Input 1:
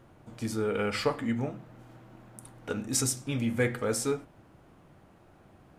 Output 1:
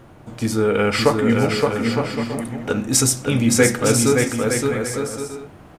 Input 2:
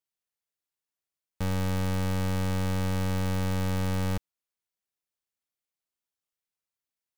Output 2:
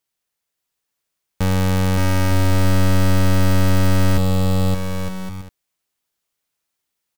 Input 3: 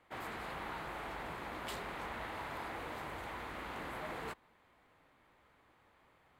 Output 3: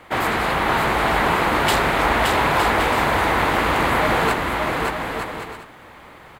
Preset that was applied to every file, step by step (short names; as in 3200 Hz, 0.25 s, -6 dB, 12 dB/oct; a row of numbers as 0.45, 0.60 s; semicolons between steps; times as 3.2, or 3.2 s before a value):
bouncing-ball echo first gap 0.57 s, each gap 0.6×, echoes 5; match loudness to -19 LUFS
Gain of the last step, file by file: +11.5, +10.5, +23.0 dB